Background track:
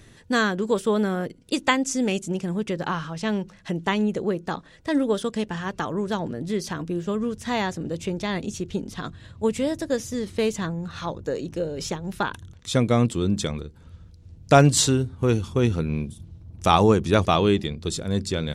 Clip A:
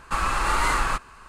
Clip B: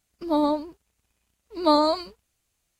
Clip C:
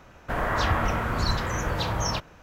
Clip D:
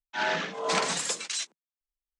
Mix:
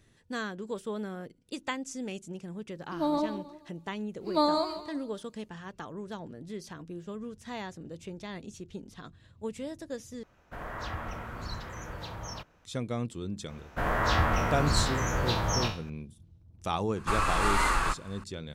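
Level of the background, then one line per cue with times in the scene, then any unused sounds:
background track −13.5 dB
0:02.70: mix in B −6.5 dB + feedback echo with a swinging delay time 159 ms, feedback 35%, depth 70 cents, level −11 dB
0:10.23: overwrite with C −13 dB
0:13.48: mix in C −3 dB + peak hold with a decay on every bin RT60 0.39 s
0:16.96: mix in A −3.5 dB
not used: D

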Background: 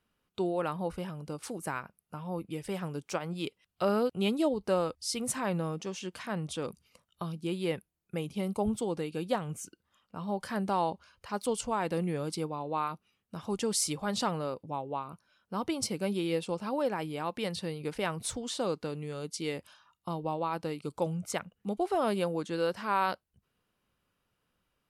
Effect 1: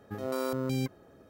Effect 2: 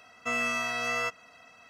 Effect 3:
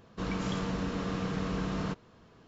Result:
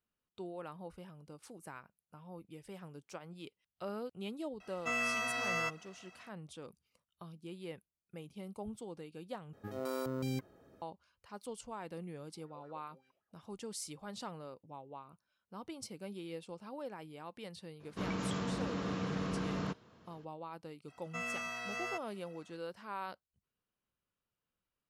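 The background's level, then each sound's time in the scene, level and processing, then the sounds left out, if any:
background −13.5 dB
0:04.60: mix in 2 −5 dB
0:09.53: overwrite with 1 −6 dB
0:12.24: mix in 1 −17 dB + LFO wah 5.2 Hz 520–1,800 Hz, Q 6.1
0:17.79: mix in 3 −3.5 dB, fades 0.02 s + high-pass filter 85 Hz
0:20.88: mix in 2 −10.5 dB

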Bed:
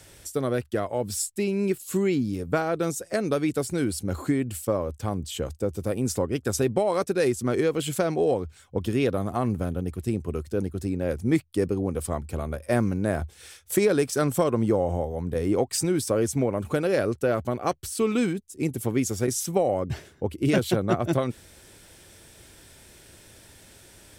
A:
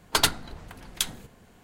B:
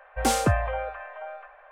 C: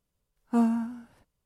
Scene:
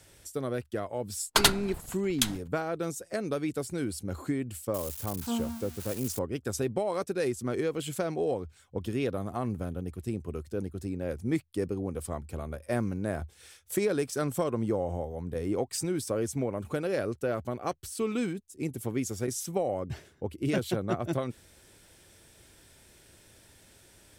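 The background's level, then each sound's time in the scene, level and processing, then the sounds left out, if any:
bed −6.5 dB
0:01.21: mix in A + noise gate −44 dBFS, range −36 dB
0:04.74: mix in C −8.5 dB + spike at every zero crossing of −22.5 dBFS
not used: B

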